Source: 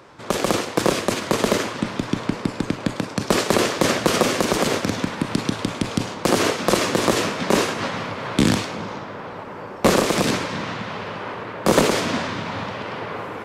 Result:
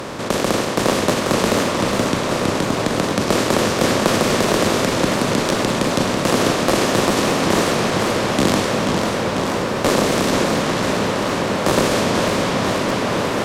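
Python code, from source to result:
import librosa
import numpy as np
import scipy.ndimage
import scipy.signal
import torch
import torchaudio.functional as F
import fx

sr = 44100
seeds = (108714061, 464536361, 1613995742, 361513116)

y = fx.bin_compress(x, sr, power=0.4)
y = fx.buffer_crackle(y, sr, first_s=0.88, period_s=0.2, block=512, kind='repeat')
y = fx.echo_warbled(y, sr, ms=489, feedback_pct=76, rate_hz=2.8, cents=166, wet_db=-6.5)
y = y * librosa.db_to_amplitude(-4.5)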